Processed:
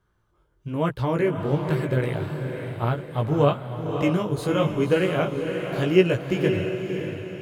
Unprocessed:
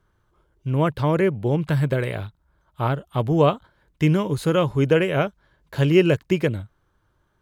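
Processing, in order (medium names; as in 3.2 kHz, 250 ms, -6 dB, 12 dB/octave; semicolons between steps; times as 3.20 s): chorus 1 Hz, delay 16 ms, depth 5 ms; echo that smears into a reverb 566 ms, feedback 47%, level -6 dB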